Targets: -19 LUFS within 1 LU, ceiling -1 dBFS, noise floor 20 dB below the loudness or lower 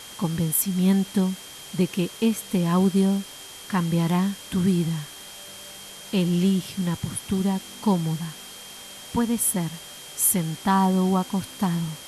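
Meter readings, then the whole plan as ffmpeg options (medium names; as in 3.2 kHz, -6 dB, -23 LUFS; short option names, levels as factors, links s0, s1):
steady tone 3.2 kHz; tone level -44 dBFS; noise floor -42 dBFS; noise floor target -44 dBFS; loudness -24.0 LUFS; peak level -8.5 dBFS; loudness target -19.0 LUFS
-> -af "bandreject=f=3200:w=30"
-af "afftdn=nr=6:nf=-42"
-af "volume=1.78"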